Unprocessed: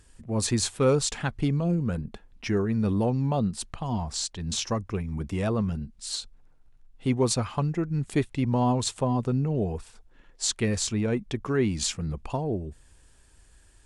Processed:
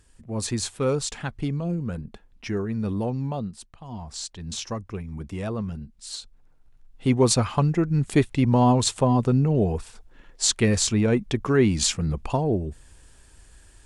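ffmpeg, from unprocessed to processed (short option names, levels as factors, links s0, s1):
-af "volume=6.68,afade=t=out:st=3.23:d=0.49:silence=0.281838,afade=t=in:st=3.72:d=0.54:silence=0.316228,afade=t=in:st=6.19:d=1.17:silence=0.375837"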